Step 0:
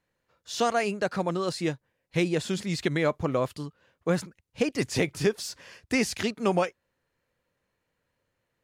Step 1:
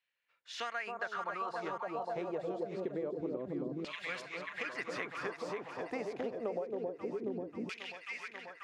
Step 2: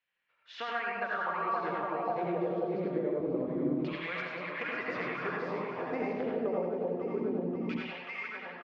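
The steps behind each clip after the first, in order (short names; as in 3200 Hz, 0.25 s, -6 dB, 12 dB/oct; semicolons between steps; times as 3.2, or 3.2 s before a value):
echo with dull and thin repeats by turns 0.269 s, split 980 Hz, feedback 84%, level -3 dB; LFO band-pass saw down 0.26 Hz 260–2900 Hz; compressor 10:1, threshold -36 dBFS, peak gain reduction 14 dB; gain +2 dB
air absorption 250 m; echo 0.104 s -7 dB; reverb RT60 0.40 s, pre-delay 69 ms, DRR -1 dB; gain +2.5 dB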